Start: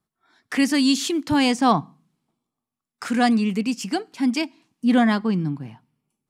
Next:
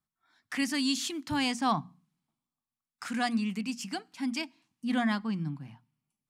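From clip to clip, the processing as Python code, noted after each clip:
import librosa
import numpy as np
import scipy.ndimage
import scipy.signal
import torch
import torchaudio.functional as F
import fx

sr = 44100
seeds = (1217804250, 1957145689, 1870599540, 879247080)

y = fx.peak_eq(x, sr, hz=430.0, db=-11.5, octaves=0.99)
y = fx.hum_notches(y, sr, base_hz=60, count=4)
y = y * 10.0 ** (-7.0 / 20.0)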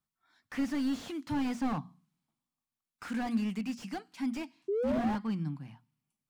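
y = fx.spec_paint(x, sr, seeds[0], shape='rise', start_s=4.68, length_s=0.48, low_hz=380.0, high_hz=910.0, level_db=-29.0)
y = fx.slew_limit(y, sr, full_power_hz=20.0)
y = y * 10.0 ** (-1.0 / 20.0)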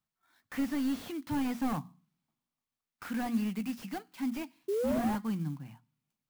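y = fx.clock_jitter(x, sr, seeds[1], jitter_ms=0.03)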